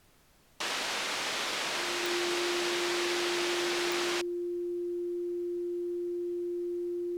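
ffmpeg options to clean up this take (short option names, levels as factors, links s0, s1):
-af "adeclick=t=4,bandreject=f=350:w=30,agate=range=0.0891:threshold=0.0501"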